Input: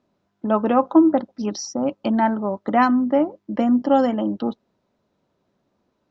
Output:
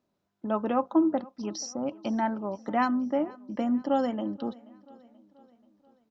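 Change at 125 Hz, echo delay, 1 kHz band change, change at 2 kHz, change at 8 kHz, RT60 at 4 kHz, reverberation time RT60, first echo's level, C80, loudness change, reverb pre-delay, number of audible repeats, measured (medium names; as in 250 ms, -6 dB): no reading, 482 ms, -9.0 dB, -8.0 dB, no reading, no reverb, no reverb, -23.0 dB, no reverb, -9.0 dB, no reverb, 3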